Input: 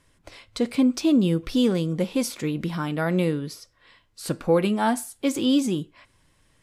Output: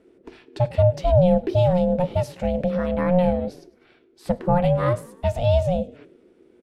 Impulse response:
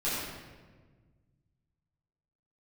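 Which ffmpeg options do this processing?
-filter_complex "[0:a]bass=frequency=250:gain=12,treble=frequency=4000:gain=-12,asplit=5[link_01][link_02][link_03][link_04][link_05];[link_02]adelay=101,afreqshift=-42,volume=-22dB[link_06];[link_03]adelay=202,afreqshift=-84,volume=-26.9dB[link_07];[link_04]adelay=303,afreqshift=-126,volume=-31.8dB[link_08];[link_05]adelay=404,afreqshift=-168,volume=-36.6dB[link_09];[link_01][link_06][link_07][link_08][link_09]amix=inputs=5:normalize=0,aeval=exprs='val(0)*sin(2*PI*360*n/s)':channel_layout=same"

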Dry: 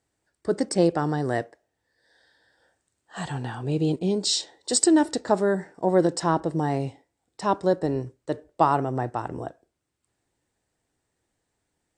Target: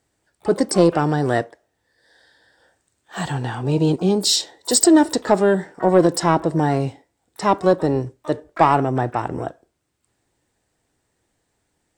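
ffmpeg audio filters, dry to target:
ffmpeg -i in.wav -filter_complex "[0:a]acontrast=68,asplit=2[link_01][link_02];[link_02]asetrate=88200,aresample=44100,atempo=0.5,volume=-17dB[link_03];[link_01][link_03]amix=inputs=2:normalize=0" out.wav

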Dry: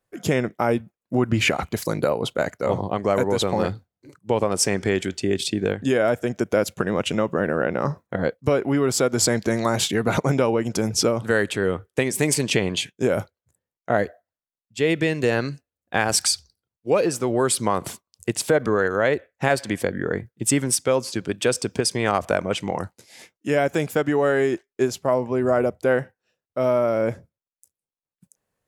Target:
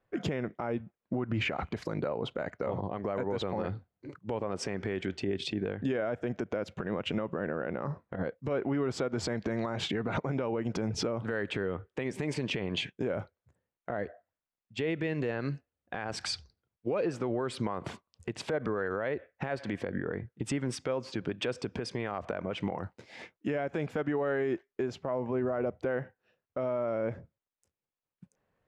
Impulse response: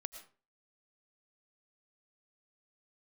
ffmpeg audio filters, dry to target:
-af "lowpass=2600,acompressor=threshold=-29dB:ratio=2.5,alimiter=level_in=0.5dB:limit=-24dB:level=0:latency=1:release=92,volume=-0.5dB,volume=2.5dB"

